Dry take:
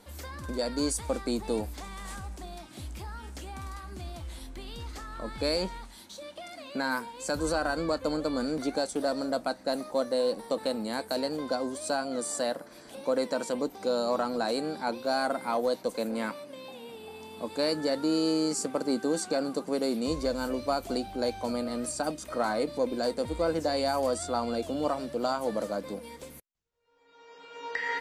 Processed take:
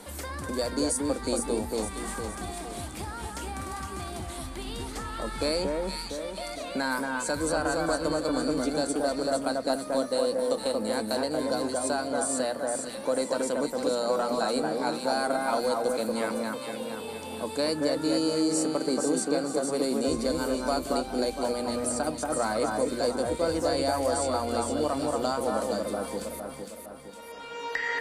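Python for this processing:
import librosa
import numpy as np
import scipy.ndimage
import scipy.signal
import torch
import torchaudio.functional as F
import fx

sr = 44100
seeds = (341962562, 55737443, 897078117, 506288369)

y = fx.peak_eq(x, sr, hz=9200.0, db=8.5, octaves=0.53)
y = fx.hum_notches(y, sr, base_hz=60, count=4)
y = fx.echo_alternate(y, sr, ms=230, hz=1800.0, feedback_pct=60, wet_db=-2.0)
y = fx.band_squash(y, sr, depth_pct=40)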